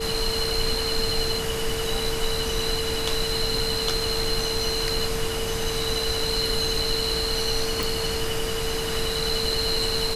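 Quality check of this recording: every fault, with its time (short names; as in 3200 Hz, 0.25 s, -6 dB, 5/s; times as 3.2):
tone 450 Hz -29 dBFS
7.83 pop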